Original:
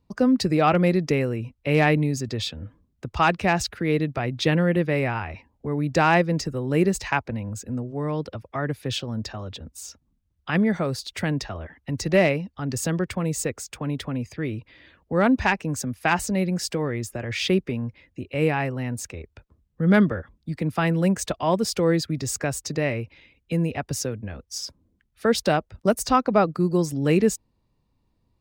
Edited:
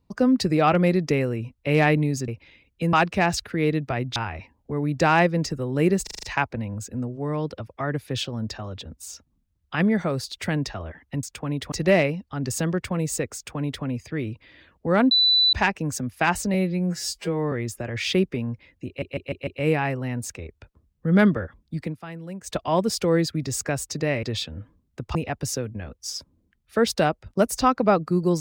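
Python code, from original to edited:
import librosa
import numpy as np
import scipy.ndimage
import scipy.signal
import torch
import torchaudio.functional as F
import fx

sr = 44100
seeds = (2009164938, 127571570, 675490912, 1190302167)

y = fx.edit(x, sr, fx.swap(start_s=2.28, length_s=0.92, other_s=22.98, other_length_s=0.65),
    fx.cut(start_s=4.43, length_s=0.68),
    fx.stutter(start_s=6.98, slice_s=0.04, count=6),
    fx.duplicate(start_s=13.61, length_s=0.49, to_s=11.98),
    fx.insert_tone(at_s=15.37, length_s=0.42, hz=3980.0, db=-15.0),
    fx.stretch_span(start_s=16.38, length_s=0.49, factor=2.0),
    fx.stutter(start_s=18.22, slice_s=0.15, count=5),
    fx.fade_down_up(start_s=20.58, length_s=0.73, db=-15.0, fade_s=0.13), tone=tone)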